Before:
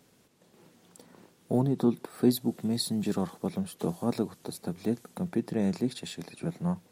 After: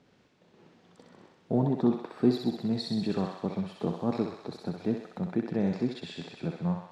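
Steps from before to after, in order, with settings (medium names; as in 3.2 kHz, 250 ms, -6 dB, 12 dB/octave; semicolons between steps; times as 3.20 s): distance through air 170 m; thinning echo 64 ms, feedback 73%, high-pass 610 Hz, level -3 dB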